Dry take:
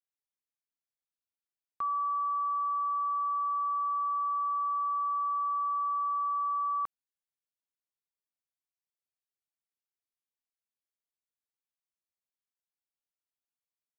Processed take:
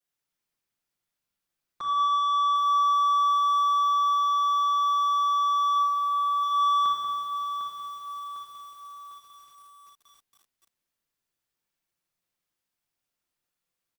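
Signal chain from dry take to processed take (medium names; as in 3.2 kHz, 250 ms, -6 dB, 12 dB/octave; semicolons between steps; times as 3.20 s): saturation -32.5 dBFS, distortion -17 dB; 5.75–6.43 s: Butterworth band-pass 860 Hz, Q 0.54; echo from a far wall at 32 m, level -9 dB; reverberation RT60 1.9 s, pre-delay 6 ms, DRR -10.5 dB; bit-crushed delay 752 ms, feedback 55%, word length 8-bit, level -9 dB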